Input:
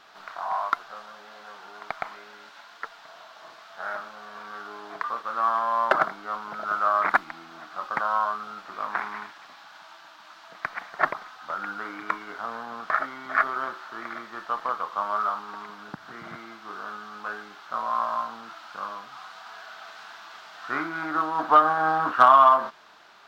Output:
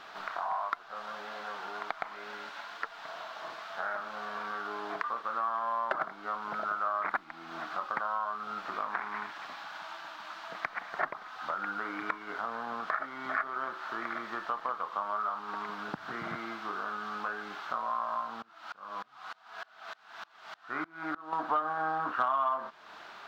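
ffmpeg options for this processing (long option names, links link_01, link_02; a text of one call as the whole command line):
ffmpeg -i in.wav -filter_complex "[0:a]asettb=1/sr,asplit=3[link_01][link_02][link_03];[link_01]atrim=end=18.424[link_04];[link_02]atrim=start=18.42:end=21.33,asetpts=PTS-STARTPTS,afade=type=in:duration=0.004:curve=qsin,afade=type=out:start_time=2.906:duration=0.004:curve=qsin,aeval=exprs='val(0)*pow(10,-29*if(lt(mod(-3.3*n/s,1),2*abs(-3.3)/1000),1-mod(-3.3*n/s,1)/(2*abs(-3.3)/1000),(mod(-3.3*n/s,1)-2*abs(-3.3)/1000)/(1-2*abs(-3.3)/1000))/20)':channel_layout=same[link_05];[link_03]atrim=start=21.326[link_06];[link_04][link_05]acrossfade=duration=0.004:curve1=hsin:curve2=qsin[link_07];[link_07][link_06]acrossfade=duration=0.004:curve1=qsin:curve2=hsin,bass=frequency=250:gain=-1,treble=frequency=4000:gain=-6,acompressor=threshold=-39dB:ratio=3,volume=5dB" out.wav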